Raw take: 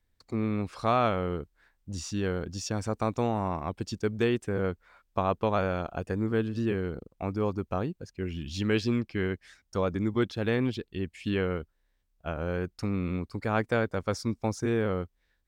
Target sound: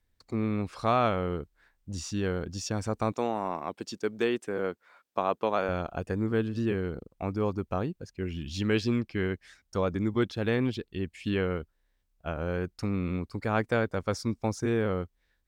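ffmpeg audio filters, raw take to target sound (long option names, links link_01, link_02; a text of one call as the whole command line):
ffmpeg -i in.wav -filter_complex "[0:a]asettb=1/sr,asplit=3[link_01][link_02][link_03];[link_01]atrim=end=3.124[link_04];[link_02]atrim=start=3.12:end=5.69,asetpts=PTS-STARTPTS,afade=type=in:duration=0.004:curve=qsin,afade=type=out:start_time=2.566:duration=0.004:curve=qsin,highpass=260[link_05];[link_03]atrim=start=5.686[link_06];[link_04][link_05]acrossfade=duration=0.004:curve1=hsin:curve2=qsin[link_07];[link_07][link_06]acrossfade=duration=0.004:curve1=qsin:curve2=hsin" out.wav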